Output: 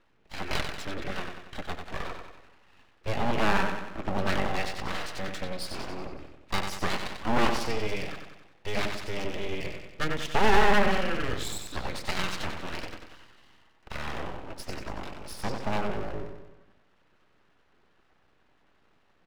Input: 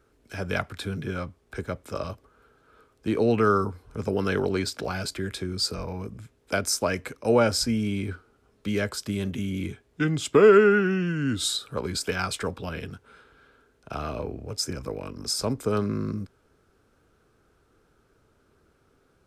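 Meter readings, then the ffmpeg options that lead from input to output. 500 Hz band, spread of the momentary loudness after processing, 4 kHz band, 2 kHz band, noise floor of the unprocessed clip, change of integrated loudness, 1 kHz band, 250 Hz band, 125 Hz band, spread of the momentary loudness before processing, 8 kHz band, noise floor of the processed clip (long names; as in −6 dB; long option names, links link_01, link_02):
−8.5 dB, 15 LU, −3.5 dB, 0.0 dB, −65 dBFS, −5.0 dB, +1.5 dB, −7.0 dB, −6.5 dB, 15 LU, −9.5 dB, −65 dBFS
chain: -filter_complex "[0:a]lowpass=frequency=2700:width_type=q:width=1.8,aecho=1:1:5.3:0.35,aeval=exprs='(tanh(3.98*val(0)+0.35)-tanh(0.35))/3.98':channel_layout=same,asplit=2[link_01][link_02];[link_02]aecho=0:1:93|186|279|372|465|558|651:0.501|0.271|0.146|0.0789|0.0426|0.023|0.0124[link_03];[link_01][link_03]amix=inputs=2:normalize=0,aeval=exprs='abs(val(0))':channel_layout=same,volume=-1dB"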